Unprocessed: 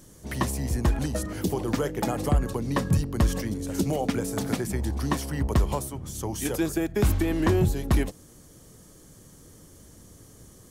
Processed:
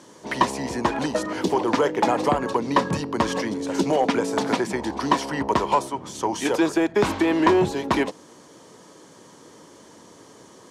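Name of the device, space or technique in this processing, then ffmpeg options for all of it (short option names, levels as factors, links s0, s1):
intercom: -af "highpass=310,lowpass=4900,equalizer=f=960:t=o:w=0.24:g=10,asoftclip=type=tanh:threshold=0.133,volume=2.82"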